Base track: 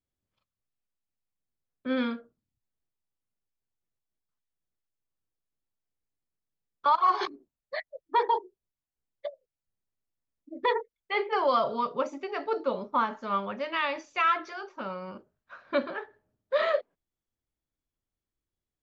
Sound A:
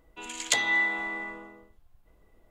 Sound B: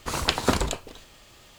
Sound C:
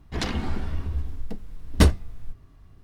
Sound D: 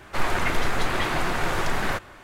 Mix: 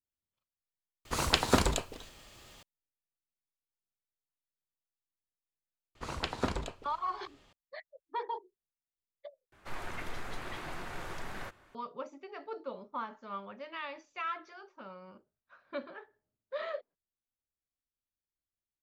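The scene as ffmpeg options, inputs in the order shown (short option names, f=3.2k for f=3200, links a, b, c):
-filter_complex "[2:a]asplit=2[a][b];[0:a]volume=-12dB[c];[b]aemphasis=mode=reproduction:type=50fm[d];[c]asplit=3[e][f][g];[e]atrim=end=1.054[h];[a]atrim=end=1.58,asetpts=PTS-STARTPTS,volume=-3dB[i];[f]atrim=start=2.626:end=9.524[j];[4:a]atrim=end=2.23,asetpts=PTS-STARTPTS,volume=-16.5dB[k];[g]atrim=start=11.746[l];[d]atrim=end=1.58,asetpts=PTS-STARTPTS,volume=-10dB,afade=t=in:d=0.004:c=hsin,afade=t=out:st=1.576:d=0.004:c=hsin,adelay=5950[m];[h][i]acrossfade=d=0.004:c1=hsin:c2=hsin[n];[n][j]acrossfade=d=0.004:c1=hsin:c2=hsin[o];[o][k]acrossfade=d=0.004:c1=hsin:c2=hsin[p];[p][l]acrossfade=d=0.004:c1=hsin:c2=hsin[q];[q][m]amix=inputs=2:normalize=0"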